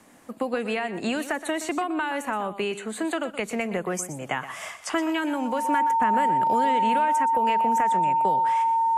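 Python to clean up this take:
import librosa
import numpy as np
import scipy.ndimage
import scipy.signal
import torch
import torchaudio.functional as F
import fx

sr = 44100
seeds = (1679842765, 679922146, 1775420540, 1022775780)

y = fx.notch(x, sr, hz=910.0, q=30.0)
y = fx.fix_echo_inverse(y, sr, delay_ms=122, level_db=-13.0)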